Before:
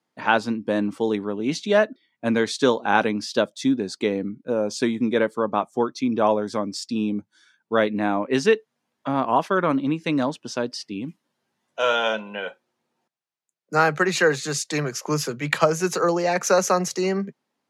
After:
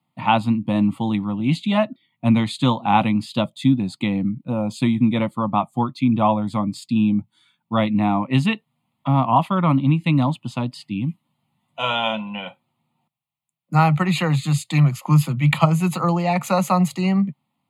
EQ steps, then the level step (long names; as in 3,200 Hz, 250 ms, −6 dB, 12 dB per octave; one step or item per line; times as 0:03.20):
parametric band 130 Hz +13.5 dB 1.4 octaves
notch filter 610 Hz, Q 14
phaser with its sweep stopped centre 1,600 Hz, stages 6
+4.0 dB